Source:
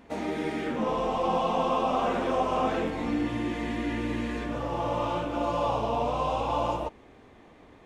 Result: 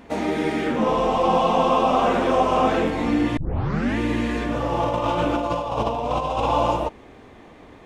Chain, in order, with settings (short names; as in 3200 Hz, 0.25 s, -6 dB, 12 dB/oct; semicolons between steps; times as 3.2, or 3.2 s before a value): 3.37 tape start 0.60 s; 4.83–6.46 negative-ratio compressor -30 dBFS, ratio -0.5; gain +7.5 dB